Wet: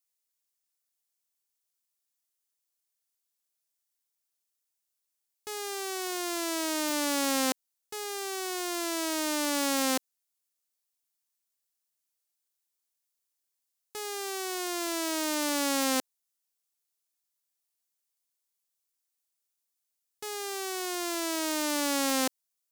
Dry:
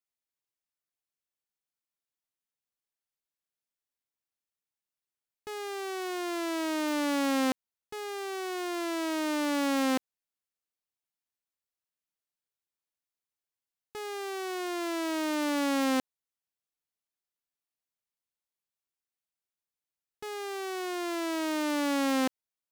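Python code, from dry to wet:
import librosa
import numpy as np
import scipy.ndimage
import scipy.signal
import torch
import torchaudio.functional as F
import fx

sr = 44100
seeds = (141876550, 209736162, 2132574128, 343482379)

y = fx.bass_treble(x, sr, bass_db=-8, treble_db=11)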